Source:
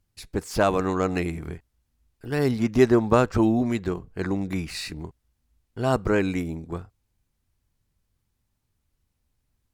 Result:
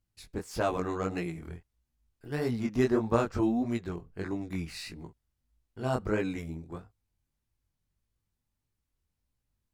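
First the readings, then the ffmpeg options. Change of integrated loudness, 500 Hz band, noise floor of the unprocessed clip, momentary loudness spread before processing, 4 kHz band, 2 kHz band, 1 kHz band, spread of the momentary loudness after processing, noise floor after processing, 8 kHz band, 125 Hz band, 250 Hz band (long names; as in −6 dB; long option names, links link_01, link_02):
−7.5 dB, −8.0 dB, −76 dBFS, 17 LU, −8.0 dB, −8.0 dB, −7.5 dB, 16 LU, −83 dBFS, −8.0 dB, −7.5 dB, −7.0 dB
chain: -af "flanger=delay=17:depth=7.1:speed=1.6,volume=-5dB"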